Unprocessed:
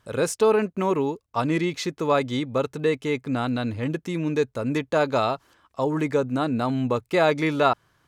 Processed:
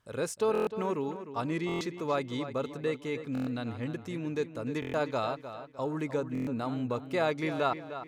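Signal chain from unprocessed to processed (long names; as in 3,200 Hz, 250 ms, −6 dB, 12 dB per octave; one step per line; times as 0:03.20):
feedback echo with a low-pass in the loop 305 ms, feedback 37%, low-pass 4,500 Hz, level −11 dB
buffer that repeats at 0:00.53/0:01.67/0:03.33/0:04.80/0:06.33, samples 1,024, times 5
level −9 dB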